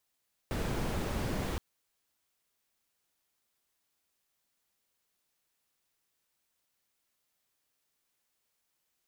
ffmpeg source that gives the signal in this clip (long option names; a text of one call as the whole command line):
ffmpeg -f lavfi -i "anoisesrc=color=brown:amplitude=0.105:duration=1.07:sample_rate=44100:seed=1" out.wav